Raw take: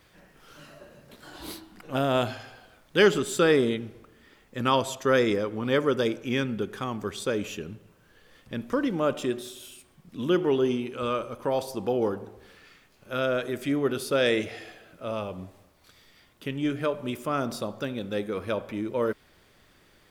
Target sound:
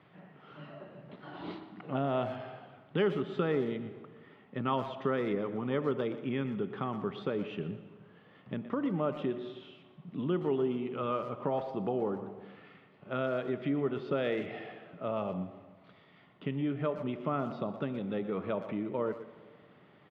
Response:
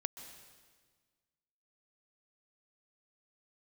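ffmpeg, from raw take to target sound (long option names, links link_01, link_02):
-filter_complex "[0:a]aemphasis=mode=reproduction:type=bsi,acompressor=threshold=-30dB:ratio=2.5,highpass=frequency=170:width=0.5412,highpass=frequency=170:width=1.3066,equalizer=frequency=230:width_type=q:width=4:gain=-8,equalizer=frequency=330:width_type=q:width=4:gain=-7,equalizer=frequency=510:width_type=q:width=4:gain=-8,equalizer=frequency=990:width_type=q:width=4:gain=-3,equalizer=frequency=1600:width_type=q:width=4:gain=-9,equalizer=frequency=2400:width_type=q:width=4:gain=-6,lowpass=frequency=2800:width=0.5412,lowpass=frequency=2800:width=1.3066,asplit=2[link_01][link_02];[link_02]adelay=120,highpass=300,lowpass=3400,asoftclip=type=hard:threshold=-31.5dB,volume=-12dB[link_03];[link_01][link_03]amix=inputs=2:normalize=0,asplit=2[link_04][link_05];[1:a]atrim=start_sample=2205[link_06];[link_05][link_06]afir=irnorm=-1:irlink=0,volume=-3dB[link_07];[link_04][link_07]amix=inputs=2:normalize=0"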